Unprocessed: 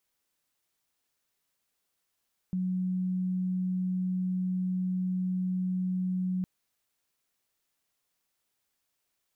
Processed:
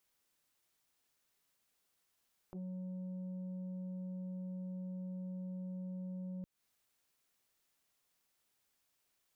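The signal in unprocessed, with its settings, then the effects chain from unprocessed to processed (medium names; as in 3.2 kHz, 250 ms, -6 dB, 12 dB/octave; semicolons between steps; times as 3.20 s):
tone sine 184 Hz -27 dBFS 3.91 s
compression 8:1, threshold -41 dBFS; transformer saturation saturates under 450 Hz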